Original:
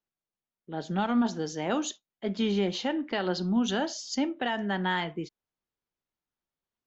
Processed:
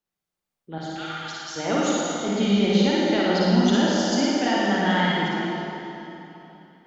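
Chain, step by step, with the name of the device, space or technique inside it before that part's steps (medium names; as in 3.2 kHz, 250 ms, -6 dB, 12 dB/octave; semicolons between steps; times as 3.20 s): 0.78–1.56 s: high-pass 1.5 kHz 24 dB/octave; tunnel (flutter echo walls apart 9.6 m, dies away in 0.67 s; reverberation RT60 3.3 s, pre-delay 42 ms, DRR -4 dB); trim +1.5 dB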